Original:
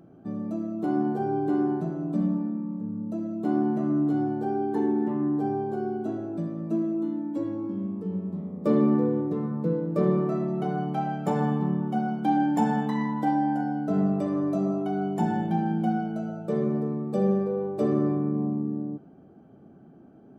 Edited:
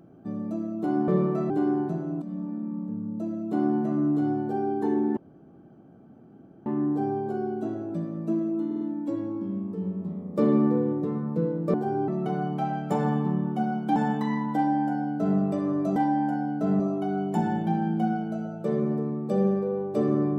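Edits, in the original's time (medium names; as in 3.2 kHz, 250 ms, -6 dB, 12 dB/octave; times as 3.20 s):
1.08–1.42 s: swap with 10.02–10.44 s
2.14–2.68 s: fade in, from -14.5 dB
5.09 s: insert room tone 1.49 s
7.09 s: stutter 0.05 s, 4 plays
12.32–12.64 s: delete
13.23–14.07 s: copy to 14.64 s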